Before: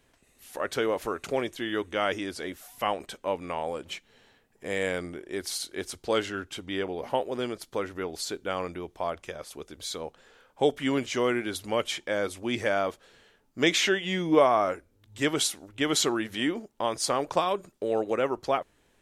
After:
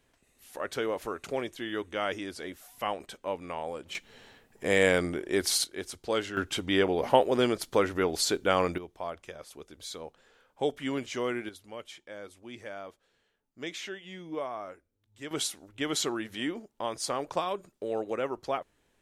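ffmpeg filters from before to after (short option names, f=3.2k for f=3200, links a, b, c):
-af "asetnsamples=n=441:p=0,asendcmd='3.95 volume volume 6dB;5.64 volume volume -3dB;6.37 volume volume 6dB;8.78 volume volume -5.5dB;11.49 volume volume -15dB;15.31 volume volume -5dB',volume=-4dB"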